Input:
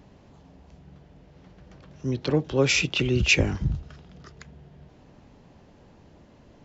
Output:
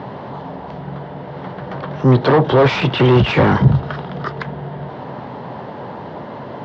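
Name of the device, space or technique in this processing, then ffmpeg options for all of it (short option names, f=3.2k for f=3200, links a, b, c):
overdrive pedal into a guitar cabinet: -filter_complex "[0:a]asplit=2[a][b];[b]highpass=f=720:p=1,volume=34dB,asoftclip=type=tanh:threshold=-6dB[c];[a][c]amix=inputs=2:normalize=0,lowpass=f=1.1k:p=1,volume=-6dB,highpass=87,equalizer=f=130:t=q:w=4:g=8,equalizer=f=310:t=q:w=4:g=-4,equalizer=f=940:t=q:w=4:g=5,equalizer=f=2.5k:t=q:w=4:g=-8,lowpass=f=4.2k:w=0.5412,lowpass=f=4.2k:w=1.3066,volume=3.5dB"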